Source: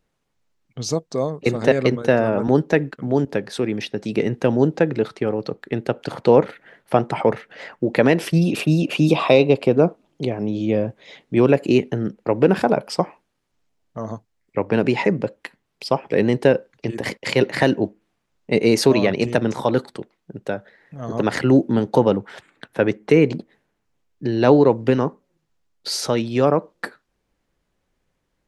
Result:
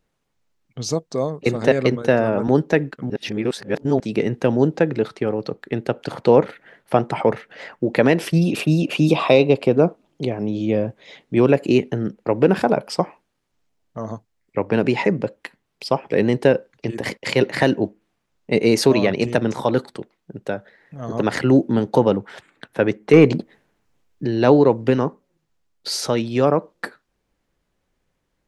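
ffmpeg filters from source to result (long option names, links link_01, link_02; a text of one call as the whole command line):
ffmpeg -i in.wav -filter_complex "[0:a]asettb=1/sr,asplit=3[link_01][link_02][link_03];[link_01]atrim=end=23.134[link_04];[link_02]atrim=start=23.13:end=24.25,asetpts=PTS-STARTPTS,afade=type=in:duration=0.004:curve=qsin,afade=type=out:start_time=1.116:duration=0.004:curve=qsin,acontrast=35[link_05];[link_03]atrim=start=24.246[link_06];[link_04][link_05]acrossfade=duration=0.004:curve1=hsin:curve2=qsin[link_07];[link_07][link_06]acrossfade=duration=0.004:curve1=qsin:curve2=hsin,asplit=3[link_08][link_09][link_10];[link_08]atrim=end=3.102[link_11];[link_09]atrim=start=3.098:end=4.002,asetpts=PTS-STARTPTS,areverse[link_12];[link_10]atrim=start=3.998[link_13];[link_11][link_12]acrossfade=duration=0.004:curve1=hsin:curve2=hsin[link_14];[link_14][link_13]acrossfade=duration=0.004:curve1=hsin:curve2=hsin" out.wav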